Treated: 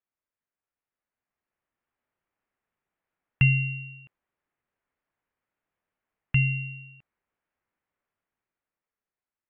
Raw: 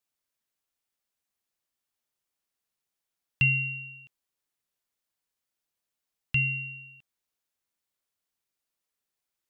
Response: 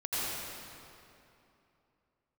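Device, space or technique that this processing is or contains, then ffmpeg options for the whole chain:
action camera in a waterproof case: -af "lowpass=f=2.2k:w=0.5412,lowpass=f=2.2k:w=1.3066,dynaudnorm=f=300:g=9:m=10dB,volume=-2.5dB" -ar 44100 -c:a aac -b:a 128k

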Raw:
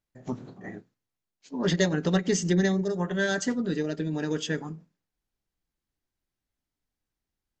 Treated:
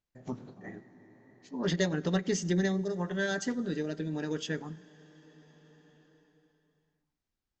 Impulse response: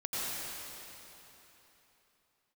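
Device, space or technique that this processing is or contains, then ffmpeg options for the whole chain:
ducked reverb: -filter_complex "[0:a]asplit=3[a][b][c];[1:a]atrim=start_sample=2205[d];[b][d]afir=irnorm=-1:irlink=0[e];[c]apad=whole_len=335192[f];[e][f]sidechaincompress=threshold=-42dB:ratio=10:attack=33:release=1150,volume=-9.5dB[g];[a][g]amix=inputs=2:normalize=0,lowpass=f=7.5k:w=0.5412,lowpass=f=7.5k:w=1.3066,volume=-5dB"

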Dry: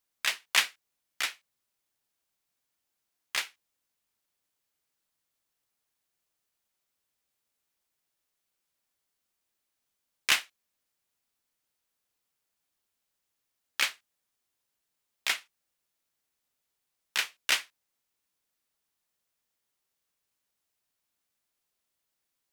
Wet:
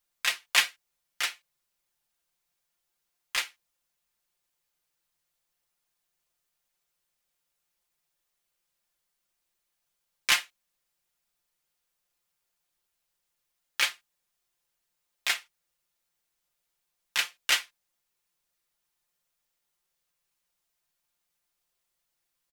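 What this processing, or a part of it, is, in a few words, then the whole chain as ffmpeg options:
low shelf boost with a cut just above: -af "lowshelf=f=67:g=6,equalizer=f=250:t=o:w=0.97:g=-5.5,aecho=1:1:5.7:0.69"

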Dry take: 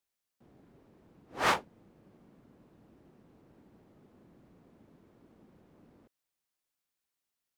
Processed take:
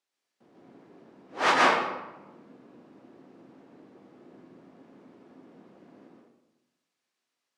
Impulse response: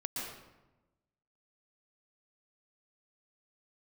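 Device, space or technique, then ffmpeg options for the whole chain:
supermarket ceiling speaker: -filter_complex "[0:a]highpass=240,lowpass=6.6k[a];[1:a]atrim=start_sample=2205[b];[a][b]afir=irnorm=-1:irlink=0,volume=6.5dB"

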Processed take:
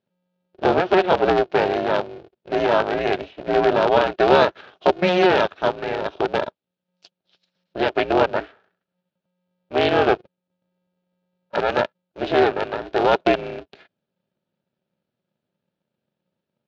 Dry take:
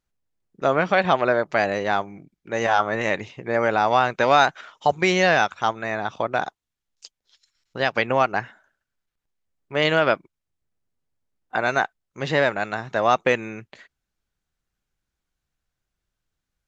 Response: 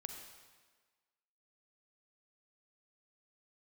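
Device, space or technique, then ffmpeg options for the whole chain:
ring modulator pedal into a guitar cabinet: -af "aeval=exprs='val(0)*sgn(sin(2*PI*180*n/s))':c=same,highpass=94,equalizer=f=390:t=q:w=4:g=8,equalizer=f=630:t=q:w=4:g=7,equalizer=f=1.1k:t=q:w=4:g=-6,equalizer=f=2k:t=q:w=4:g=-7,lowpass=f=4.1k:w=0.5412,lowpass=f=4.1k:w=1.3066"

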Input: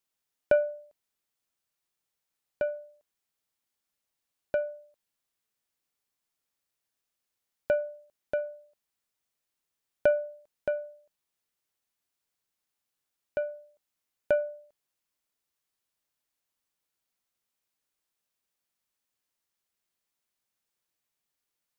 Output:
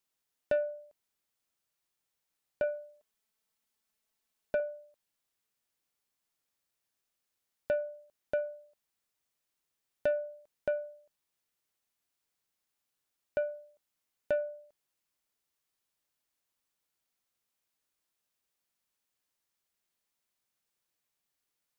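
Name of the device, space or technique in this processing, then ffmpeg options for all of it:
soft clipper into limiter: -filter_complex "[0:a]asettb=1/sr,asplit=3[a][b][c];[a]atrim=end=2.634[d];[b]atrim=start=2.63:end=4.6,asetpts=PTS-STARTPTS,afade=t=in:d=0.004:c=qsin,afade=t=out:st=1.966:d=0.004:c=qsin,aecho=1:1:4.6:0.57,atrim=end_sample=86877[e];[c]atrim=start=4.596[f];[d][e]acrossfade=d=0.004:c1=hsin:c2=qsin[g];[g][f]acrossfade=d=0.004:c1=qsin:c2=hsin,asoftclip=type=tanh:threshold=-15.5dB,alimiter=limit=-21.5dB:level=0:latency=1:release=435"

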